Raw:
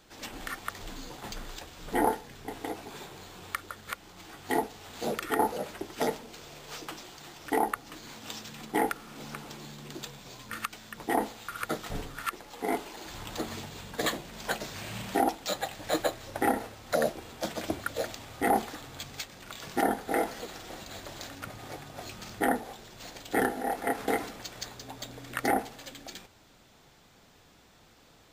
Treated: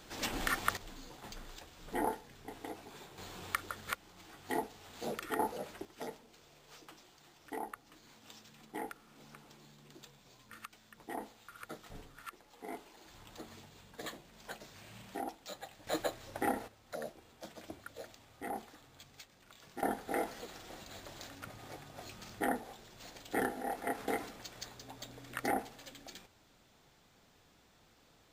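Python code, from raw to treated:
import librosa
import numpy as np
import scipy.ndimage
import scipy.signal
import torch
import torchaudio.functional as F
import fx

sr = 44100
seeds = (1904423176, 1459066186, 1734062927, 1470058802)

y = fx.gain(x, sr, db=fx.steps((0.0, 4.0), (0.77, -8.5), (3.18, -1.0), (3.95, -7.5), (5.85, -14.5), (15.87, -7.0), (16.68, -15.5), (19.83, -7.0)))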